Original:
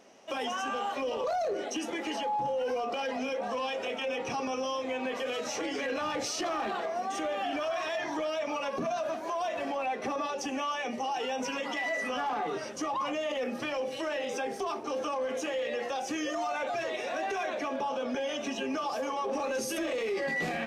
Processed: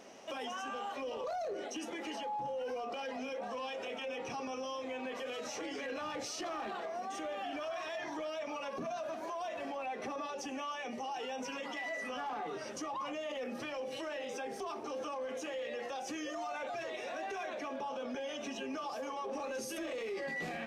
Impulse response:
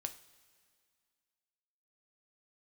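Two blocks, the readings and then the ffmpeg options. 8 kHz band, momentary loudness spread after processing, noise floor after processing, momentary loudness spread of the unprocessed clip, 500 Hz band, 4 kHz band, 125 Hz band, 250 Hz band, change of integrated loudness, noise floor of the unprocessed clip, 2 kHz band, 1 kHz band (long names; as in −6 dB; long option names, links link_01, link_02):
−7.0 dB, 2 LU, −43 dBFS, 2 LU, −7.5 dB, −7.0 dB, −7.0 dB, −7.0 dB, −7.5 dB, −38 dBFS, −7.5 dB, −7.5 dB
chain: -af "alimiter=level_in=12.5dB:limit=-24dB:level=0:latency=1:release=239,volume=-12.5dB,volume=3dB"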